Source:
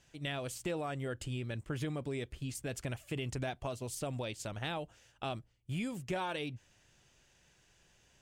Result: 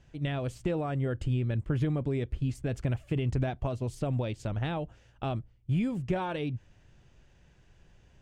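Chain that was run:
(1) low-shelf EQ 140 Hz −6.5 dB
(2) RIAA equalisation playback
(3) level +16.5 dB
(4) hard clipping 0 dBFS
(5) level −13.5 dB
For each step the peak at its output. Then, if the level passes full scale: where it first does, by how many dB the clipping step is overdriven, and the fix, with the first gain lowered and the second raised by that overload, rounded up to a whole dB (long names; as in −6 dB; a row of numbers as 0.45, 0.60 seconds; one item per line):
−24.0, −20.0, −3.5, −3.5, −17.0 dBFS
no step passes full scale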